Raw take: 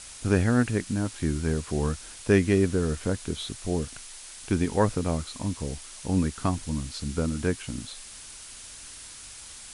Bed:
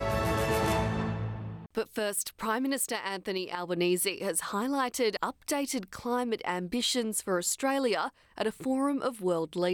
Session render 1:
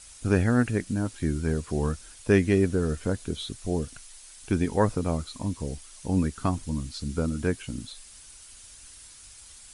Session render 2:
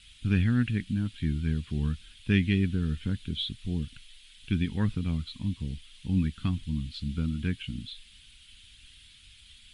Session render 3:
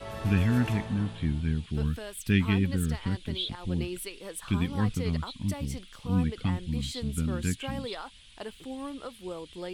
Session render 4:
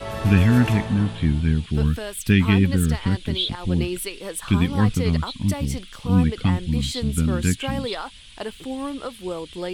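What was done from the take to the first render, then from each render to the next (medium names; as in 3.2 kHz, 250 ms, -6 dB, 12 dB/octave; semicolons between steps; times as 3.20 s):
noise reduction 8 dB, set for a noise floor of -44 dBFS
FFT filter 210 Hz 0 dB, 590 Hz -23 dB, 1 kHz -16 dB, 3.3 kHz +8 dB, 5.8 kHz -16 dB
add bed -9.5 dB
trim +8.5 dB; peak limiter -3 dBFS, peak gain reduction 3 dB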